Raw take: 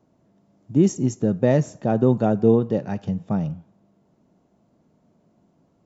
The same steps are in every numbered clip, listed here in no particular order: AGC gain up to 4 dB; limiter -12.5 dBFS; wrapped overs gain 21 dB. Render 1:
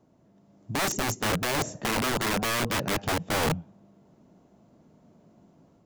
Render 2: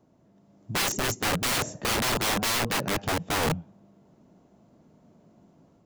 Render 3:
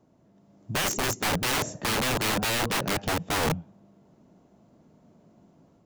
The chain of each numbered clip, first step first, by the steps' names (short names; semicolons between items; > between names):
AGC > limiter > wrapped overs; AGC > wrapped overs > limiter; limiter > AGC > wrapped overs